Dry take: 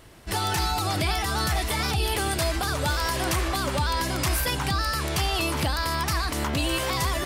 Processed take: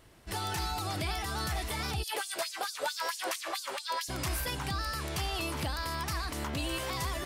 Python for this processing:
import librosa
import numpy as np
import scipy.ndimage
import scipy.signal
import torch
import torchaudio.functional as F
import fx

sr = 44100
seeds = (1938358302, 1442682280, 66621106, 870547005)

y = fx.filter_lfo_highpass(x, sr, shape='sine', hz=4.5, low_hz=460.0, high_hz=6500.0, q=2.1, at=(2.02, 4.08), fade=0.02)
y = F.gain(torch.from_numpy(y), -8.5).numpy()